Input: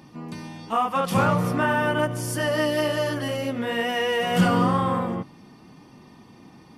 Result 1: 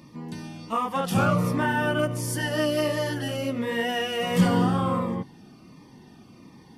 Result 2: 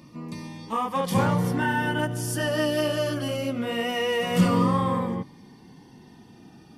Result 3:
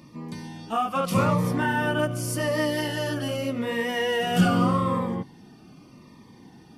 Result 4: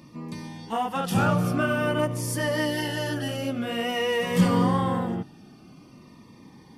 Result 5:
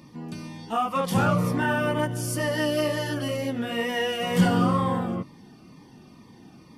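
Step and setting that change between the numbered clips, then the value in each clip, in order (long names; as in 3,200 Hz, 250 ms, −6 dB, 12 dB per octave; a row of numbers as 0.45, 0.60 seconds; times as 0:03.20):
phaser whose notches keep moving one way, speed: 1.4, 0.24, 0.83, 0.49, 2.1 Hertz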